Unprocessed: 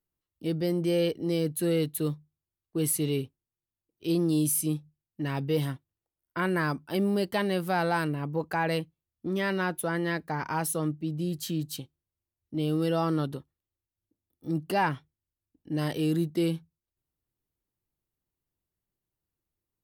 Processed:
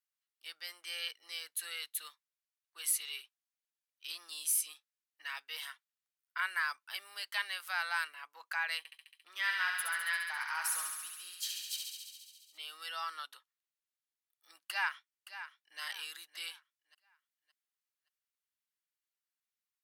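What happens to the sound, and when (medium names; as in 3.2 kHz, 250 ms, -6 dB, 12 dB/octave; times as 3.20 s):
8.78–12.58 s: thinning echo 69 ms, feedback 79%, high-pass 780 Hz, level -4 dB
14.68–15.80 s: echo throw 570 ms, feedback 35%, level -12 dB
whole clip: high-pass 1.3 kHz 24 dB/octave; treble shelf 12 kHz -7.5 dB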